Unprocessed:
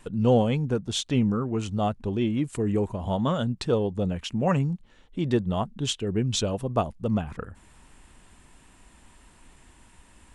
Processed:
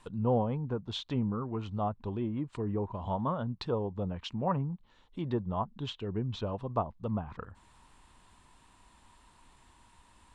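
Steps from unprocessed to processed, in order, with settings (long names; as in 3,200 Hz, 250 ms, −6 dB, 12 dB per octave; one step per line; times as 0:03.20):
treble cut that deepens with the level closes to 1,200 Hz, closed at −21 dBFS
graphic EQ with 15 bands 100 Hz +3 dB, 1,000 Hz +10 dB, 4,000 Hz +7 dB
level −9 dB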